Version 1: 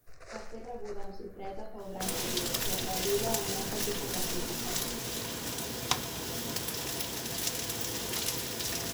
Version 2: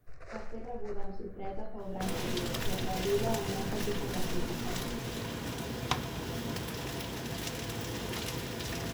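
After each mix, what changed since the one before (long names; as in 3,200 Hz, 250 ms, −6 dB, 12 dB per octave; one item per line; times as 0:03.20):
master: add bass and treble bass +5 dB, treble −11 dB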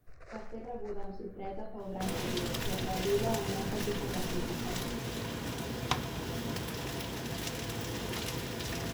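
first sound: send −11.5 dB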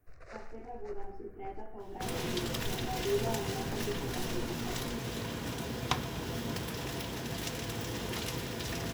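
speech: add phaser with its sweep stopped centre 830 Hz, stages 8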